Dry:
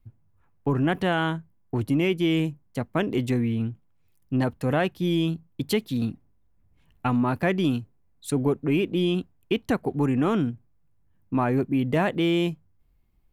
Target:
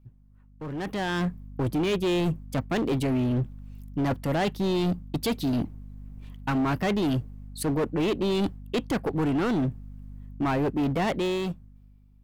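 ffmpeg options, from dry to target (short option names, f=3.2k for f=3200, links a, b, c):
-af "areverse,acompressor=threshold=-33dB:ratio=5,areverse,asetrate=48000,aresample=44100,aeval=exprs='val(0)+0.00224*(sin(2*PI*50*n/s)+sin(2*PI*2*50*n/s)/2+sin(2*PI*3*50*n/s)/3+sin(2*PI*4*50*n/s)/4+sin(2*PI*5*50*n/s)/5)':c=same,asoftclip=type=hard:threshold=-34.5dB,dynaudnorm=f=170:g=11:m=15.5dB,volume=-3dB"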